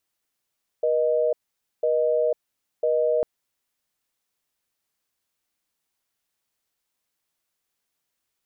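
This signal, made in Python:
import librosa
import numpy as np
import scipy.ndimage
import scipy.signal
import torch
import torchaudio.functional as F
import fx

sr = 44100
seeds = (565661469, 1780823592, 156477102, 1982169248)

y = fx.call_progress(sr, length_s=2.4, kind='busy tone', level_db=-21.5)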